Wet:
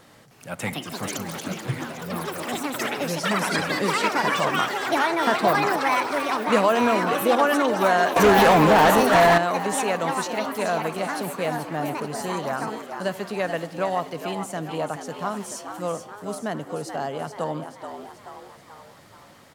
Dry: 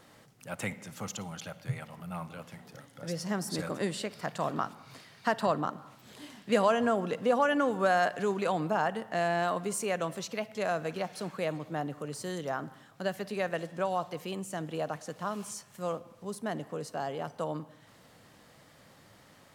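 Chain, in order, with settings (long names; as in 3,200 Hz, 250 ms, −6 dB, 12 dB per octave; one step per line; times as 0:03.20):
echo with shifted repeats 432 ms, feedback 53%, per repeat +100 Hz, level −8.5 dB
delay with pitch and tempo change per echo 310 ms, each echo +6 semitones, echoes 3
0:08.16–0:09.38: leveller curve on the samples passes 3
level +5.5 dB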